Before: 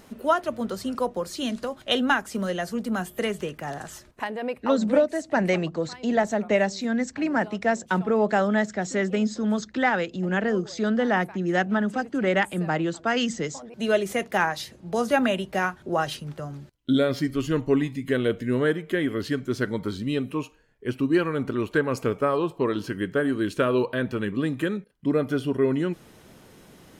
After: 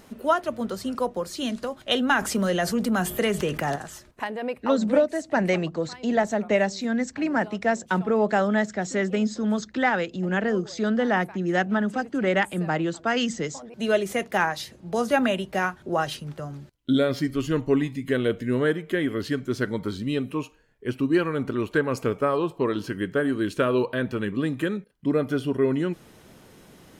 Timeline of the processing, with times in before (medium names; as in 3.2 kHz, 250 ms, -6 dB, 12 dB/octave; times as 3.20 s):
2.12–3.76 s: level flattener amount 50%